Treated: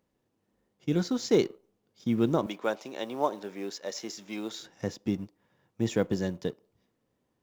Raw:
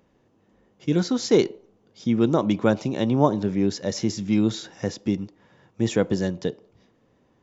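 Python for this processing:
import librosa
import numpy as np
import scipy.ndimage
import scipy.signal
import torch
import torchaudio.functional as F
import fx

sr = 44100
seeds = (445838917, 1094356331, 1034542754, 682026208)

y = fx.law_mismatch(x, sr, coded='A')
y = fx.highpass(y, sr, hz=490.0, slope=12, at=(2.46, 4.6))
y = y * 10.0 ** (-5.0 / 20.0)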